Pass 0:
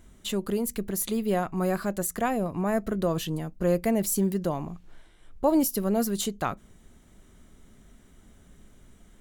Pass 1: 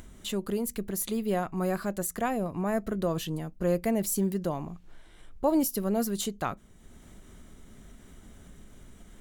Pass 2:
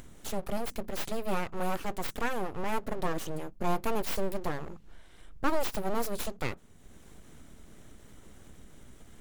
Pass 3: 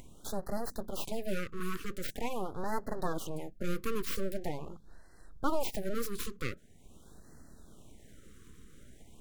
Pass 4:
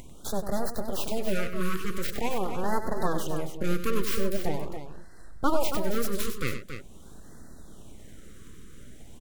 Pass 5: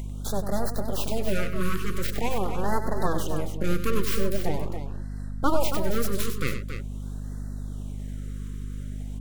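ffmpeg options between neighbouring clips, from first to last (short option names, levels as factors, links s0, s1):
-af "acompressor=mode=upward:threshold=0.0126:ratio=2.5,volume=0.75"
-af "aeval=exprs='abs(val(0))':c=same"
-af "afftfilt=real='re*(1-between(b*sr/1024,690*pow(2900/690,0.5+0.5*sin(2*PI*0.44*pts/sr))/1.41,690*pow(2900/690,0.5+0.5*sin(2*PI*0.44*pts/sr))*1.41))':imag='im*(1-between(b*sr/1024,690*pow(2900/690,0.5+0.5*sin(2*PI*0.44*pts/sr))/1.41,690*pow(2900/690,0.5+0.5*sin(2*PI*0.44*pts/sr))*1.41))':win_size=1024:overlap=0.75,volume=0.75"
-af "aecho=1:1:96.21|277:0.316|0.355,volume=2"
-af "aeval=exprs='val(0)+0.02*(sin(2*PI*50*n/s)+sin(2*PI*2*50*n/s)/2+sin(2*PI*3*50*n/s)/3+sin(2*PI*4*50*n/s)/4+sin(2*PI*5*50*n/s)/5)':c=same,volume=1.19"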